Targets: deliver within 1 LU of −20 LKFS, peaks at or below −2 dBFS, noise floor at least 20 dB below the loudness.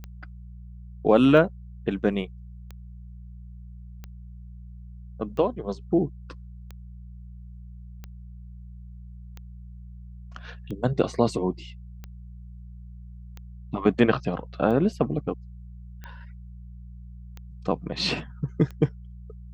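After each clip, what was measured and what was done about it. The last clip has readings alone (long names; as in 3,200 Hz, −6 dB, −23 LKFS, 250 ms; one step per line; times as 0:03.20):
number of clicks 15; mains hum 60 Hz; hum harmonics up to 180 Hz; level of the hum −39 dBFS; integrated loudness −25.5 LKFS; sample peak −4.5 dBFS; target loudness −20.0 LKFS
→ click removal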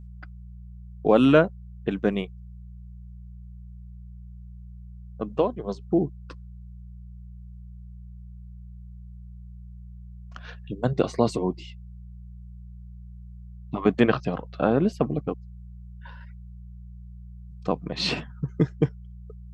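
number of clicks 0; mains hum 60 Hz; hum harmonics up to 180 Hz; level of the hum −39 dBFS
→ hum removal 60 Hz, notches 3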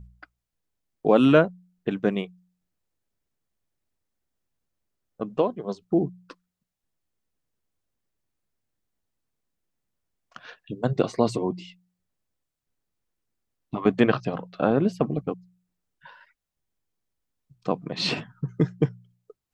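mains hum none found; integrated loudness −25.0 LKFS; sample peak −4.5 dBFS; target loudness −20.0 LKFS
→ level +5 dB
brickwall limiter −2 dBFS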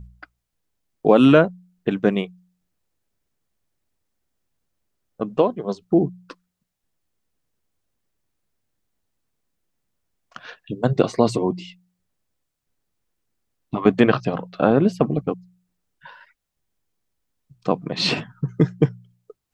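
integrated loudness −20.5 LKFS; sample peak −2.0 dBFS; background noise floor −78 dBFS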